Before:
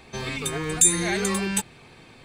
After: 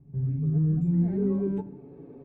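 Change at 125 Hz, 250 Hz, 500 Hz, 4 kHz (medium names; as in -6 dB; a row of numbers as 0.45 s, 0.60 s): +8.5 dB, +3.5 dB, -3.0 dB, under -40 dB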